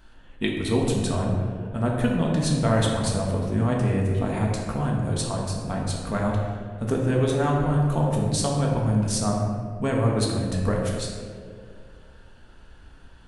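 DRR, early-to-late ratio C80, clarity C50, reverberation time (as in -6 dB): -2.0 dB, 3.0 dB, 1.0 dB, 2.2 s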